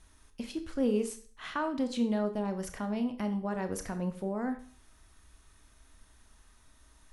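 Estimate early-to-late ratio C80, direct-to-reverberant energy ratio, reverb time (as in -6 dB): 16.5 dB, 7.5 dB, 0.45 s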